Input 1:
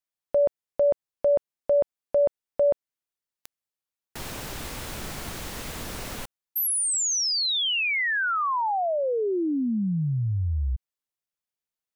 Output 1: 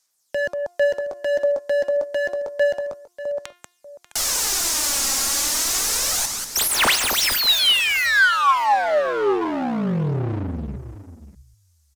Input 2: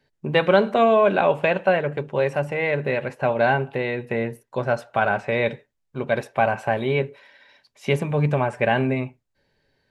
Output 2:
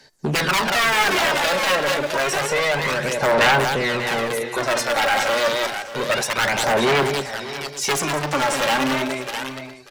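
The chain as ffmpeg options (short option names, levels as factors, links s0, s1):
-filter_complex "[0:a]highshelf=f=4100:t=q:w=1.5:g=13,aeval=exprs='(mod(4.73*val(0)+1,2)-1)/4.73':c=same,bandreject=f=352.5:t=h:w=4,bandreject=f=705:t=h:w=4,bandreject=f=1057.5:t=h:w=4,bandreject=f=1410:t=h:w=4,bandreject=f=1762.5:t=h:w=4,bandreject=f=2115:t=h:w=4,bandreject=f=2467.5:t=h:w=4,bandreject=f=2820:t=h:w=4,bandreject=f=3172.5:t=h:w=4,bandreject=f=3525:t=h:w=4,bandreject=f=3877.5:t=h:w=4,bandreject=f=4230:t=h:w=4,bandreject=f=4582.5:t=h:w=4,bandreject=f=4935:t=h:w=4,bandreject=f=5287.5:t=h:w=4,bandreject=f=5640:t=h:w=4,asplit=2[s0][s1];[s1]aecho=0:1:189|659:0.316|0.106[s2];[s0][s2]amix=inputs=2:normalize=0,aresample=32000,aresample=44100,acontrast=53,asoftclip=type=hard:threshold=0.1,acrossover=split=130[s3][s4];[s3]acompressor=threshold=0.00141:ratio=1.5:knee=2.83:detection=peak[s5];[s5][s4]amix=inputs=2:normalize=0,asplit=2[s6][s7];[s7]highpass=f=720:p=1,volume=5.01,asoftclip=type=tanh:threshold=0.266[s8];[s6][s8]amix=inputs=2:normalize=0,lowpass=f=4600:p=1,volume=0.501,equalizer=f=460:t=o:w=1.4:g=-3,aphaser=in_gain=1:out_gain=1:delay=3.7:decay=0.47:speed=0.29:type=sinusoidal,asplit=2[s9][s10];[s10]aecho=0:1:590:0.178[s11];[s9][s11]amix=inputs=2:normalize=0"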